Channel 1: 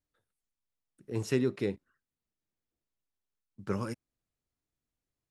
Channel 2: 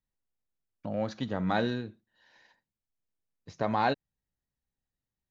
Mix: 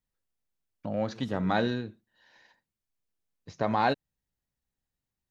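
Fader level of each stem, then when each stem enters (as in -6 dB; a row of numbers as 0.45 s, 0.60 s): -18.5 dB, +1.5 dB; 0.00 s, 0.00 s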